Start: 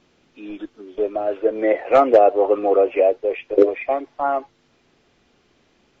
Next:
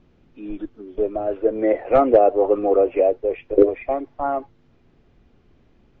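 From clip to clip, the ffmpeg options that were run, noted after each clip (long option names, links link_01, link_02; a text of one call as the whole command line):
ffmpeg -i in.wav -af "aemphasis=mode=reproduction:type=riaa,volume=-3.5dB" out.wav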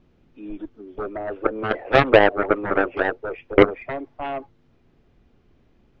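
ffmpeg -i in.wav -af "aeval=exprs='0.891*(cos(1*acos(clip(val(0)/0.891,-1,1)))-cos(1*PI/2))+0.0251*(cos(6*acos(clip(val(0)/0.891,-1,1)))-cos(6*PI/2))+0.224*(cos(7*acos(clip(val(0)/0.891,-1,1)))-cos(7*PI/2))':channel_layout=same" out.wav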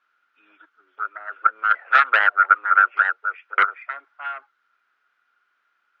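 ffmpeg -i in.wav -af "highpass=frequency=1400:width_type=q:width=11,volume=-5.5dB" out.wav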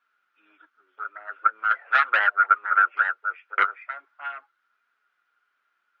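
ffmpeg -i in.wav -af "flanger=delay=4.1:depth=6:regen=-36:speed=0.41:shape=triangular" out.wav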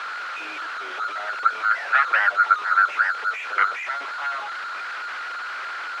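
ffmpeg -i in.wav -af "aeval=exprs='val(0)+0.5*0.0631*sgn(val(0))':channel_layout=same,highpass=580,lowpass=3000" out.wav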